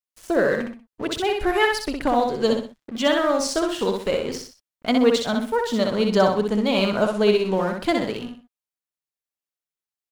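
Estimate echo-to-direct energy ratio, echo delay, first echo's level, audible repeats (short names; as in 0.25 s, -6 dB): -3.5 dB, 63 ms, -4.0 dB, 3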